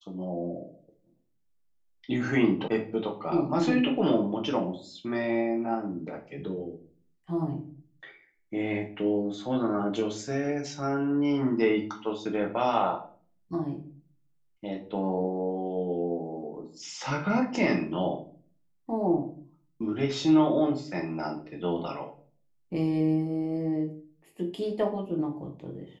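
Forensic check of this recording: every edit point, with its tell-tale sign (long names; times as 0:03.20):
0:02.68: cut off before it has died away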